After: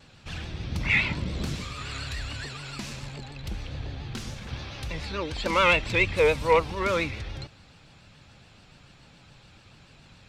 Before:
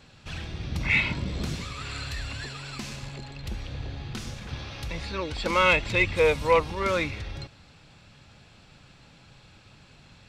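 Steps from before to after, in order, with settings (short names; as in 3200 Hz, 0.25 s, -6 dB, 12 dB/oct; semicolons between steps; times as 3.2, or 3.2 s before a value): vibrato 7 Hz 89 cents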